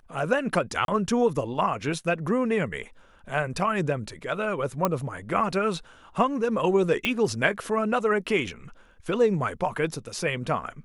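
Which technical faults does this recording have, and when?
0:00.85–0:00.88: drop-out 32 ms
0:04.85: click −9 dBFS
0:07.05: click −11 dBFS

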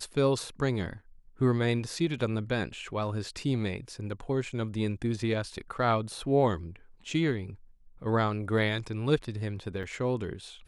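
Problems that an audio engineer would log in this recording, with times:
0:09.83: drop-out 4.4 ms

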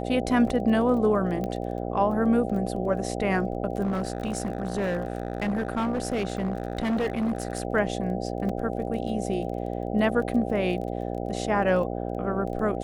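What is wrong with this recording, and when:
mains buzz 60 Hz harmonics 13 −31 dBFS
surface crackle 18 per second −35 dBFS
0:01.44: click −19 dBFS
0:03.82–0:07.65: clipping −22.5 dBFS
0:08.49: drop-out 4.3 ms

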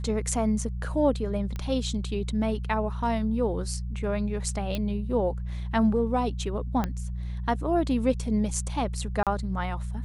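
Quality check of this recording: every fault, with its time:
mains hum 60 Hz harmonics 3 −32 dBFS
0:01.56: click −21 dBFS
0:04.75: click −16 dBFS
0:06.84: click −14 dBFS
0:09.23–0:09.27: drop-out 37 ms

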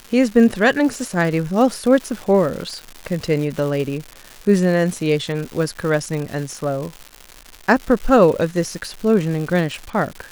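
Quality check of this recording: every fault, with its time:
surface crackle 270 per second −26 dBFS

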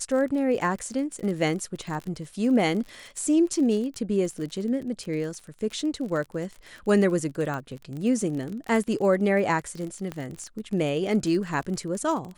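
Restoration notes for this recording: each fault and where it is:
surface crackle 37 per second −32 dBFS
0:07.54: click −21 dBFS
0:10.12: click −19 dBFS

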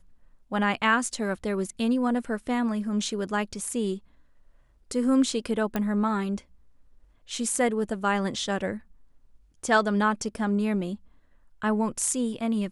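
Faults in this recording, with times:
0:05.76: click −14 dBFS

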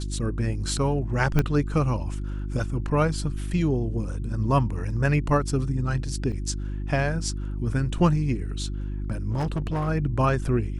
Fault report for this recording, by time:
mains hum 50 Hz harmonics 7 −30 dBFS
0:01.39: click −9 dBFS
0:06.32–0:06.33: drop-out 5.8 ms
0:09.30–0:09.89: clipping −22.5 dBFS

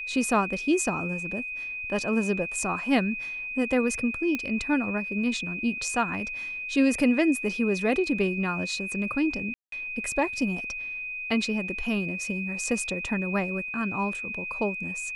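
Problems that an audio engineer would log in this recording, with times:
whistle 2,500 Hz −32 dBFS
0:04.35: click −15 dBFS
0:09.54–0:09.72: drop-out 183 ms

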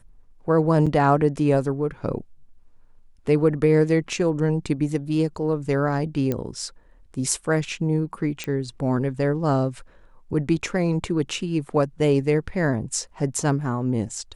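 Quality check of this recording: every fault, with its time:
0:00.86–0:00.87: drop-out 5.5 ms
0:06.32: click −12 dBFS
0:08.44: click −14 dBFS

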